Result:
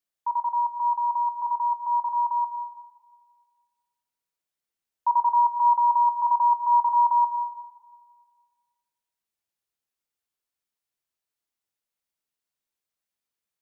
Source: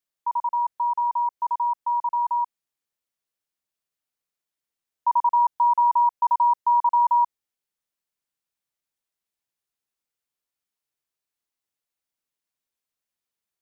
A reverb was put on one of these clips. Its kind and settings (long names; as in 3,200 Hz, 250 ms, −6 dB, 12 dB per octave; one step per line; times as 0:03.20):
dense smooth reverb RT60 1.7 s, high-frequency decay 0.8×, DRR 10 dB
level −1.5 dB